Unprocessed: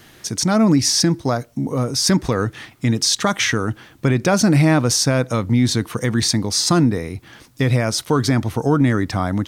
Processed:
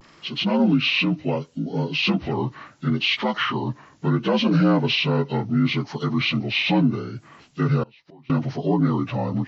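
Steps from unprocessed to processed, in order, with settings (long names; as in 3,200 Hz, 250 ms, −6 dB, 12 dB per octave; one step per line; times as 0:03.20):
partials spread apart or drawn together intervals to 78%
pitch vibrato 0.72 Hz 59 cents
0:07.83–0:08.30: gate with flip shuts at −20 dBFS, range −27 dB
level −3 dB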